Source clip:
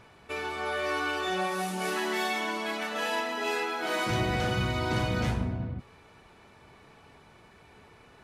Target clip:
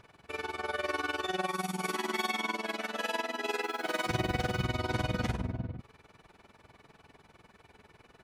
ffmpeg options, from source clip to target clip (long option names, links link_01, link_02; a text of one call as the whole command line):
ffmpeg -i in.wav -filter_complex "[0:a]asettb=1/sr,asplit=3[link_01][link_02][link_03];[link_01]atrim=end=1.464[link_04];[link_02]atrim=start=1.46:end=2.55,asetpts=PTS-STARTPTS,afade=type=in:duration=0.004:curve=qsin,afade=type=out:start_time=1.086:duration=0.004:curve=qsin,aecho=1:1:0.9:0.48,atrim=end_sample=48069[link_05];[link_03]atrim=start=2.546[link_06];[link_04][link_05]acrossfade=duration=0.004:curve1=hsin:curve2=qsin[link_07];[link_07][link_06]acrossfade=duration=0.004:curve1=qsin:curve2=hsin,asettb=1/sr,asplit=3[link_08][link_09][link_10];[link_08]atrim=end=3.624[link_11];[link_09]atrim=start=3.62:end=4.65,asetpts=PTS-STARTPTS,afade=type=in:duration=0.004:curve=qsin,afade=type=out:start_time=1.026:duration=0.004:curve=qsin,aeval=exprs='val(0)*gte(abs(val(0)),0.00596)':channel_layout=same[link_12];[link_10]atrim=start=4.646[link_13];[link_11][link_12]acrossfade=duration=0.004:curve1=hsin:curve2=qsin[link_14];[link_14][link_13]acrossfade=duration=0.004:curve1=qsin:curve2=hsin,tremolo=f=20:d=0.857" out.wav